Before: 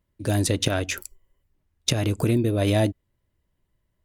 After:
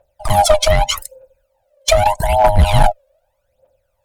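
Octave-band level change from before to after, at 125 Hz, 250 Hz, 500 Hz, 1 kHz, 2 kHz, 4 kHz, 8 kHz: +5.0 dB, -5.0 dB, +11.5 dB, +22.0 dB, +8.5 dB, +9.0 dB, +7.5 dB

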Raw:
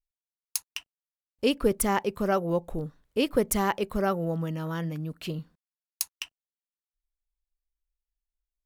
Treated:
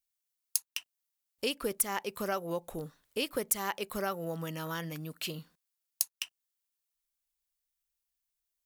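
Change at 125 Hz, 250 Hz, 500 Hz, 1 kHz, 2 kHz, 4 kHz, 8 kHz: -10.0 dB, -11.0 dB, -8.5 dB, -7.5 dB, -3.5 dB, -1.5 dB, -0.5 dB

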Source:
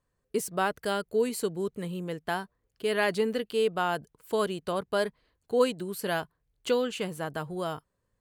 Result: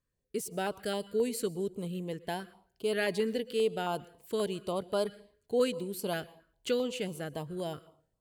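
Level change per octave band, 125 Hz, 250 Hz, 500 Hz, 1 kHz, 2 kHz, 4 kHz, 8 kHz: -2.0 dB, -2.5 dB, -3.0 dB, -7.0 dB, -6.5 dB, -3.0 dB, -2.5 dB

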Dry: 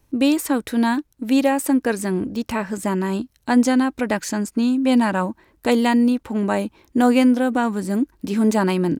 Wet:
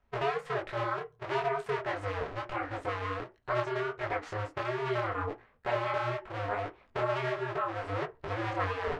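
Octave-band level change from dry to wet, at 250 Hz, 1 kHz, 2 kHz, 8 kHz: -27.0 dB, -7.5 dB, -8.0 dB, under -25 dB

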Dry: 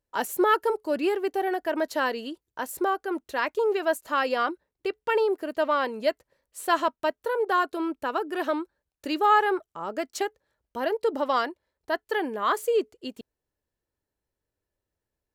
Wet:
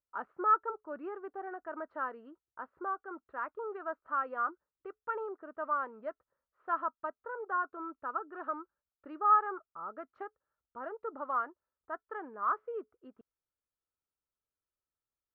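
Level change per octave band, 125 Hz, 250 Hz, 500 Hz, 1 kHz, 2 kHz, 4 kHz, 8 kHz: no reading, -16.5 dB, -16.0 dB, -6.5 dB, -12.5 dB, under -35 dB, under -35 dB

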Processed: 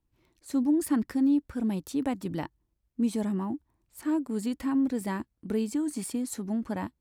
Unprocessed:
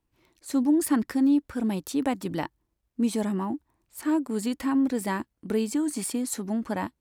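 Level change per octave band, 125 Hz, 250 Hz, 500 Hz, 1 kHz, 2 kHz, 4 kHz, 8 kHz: -1.0 dB, -2.0 dB, -4.0 dB, -5.5 dB, -6.0 dB, -6.0 dB, -6.0 dB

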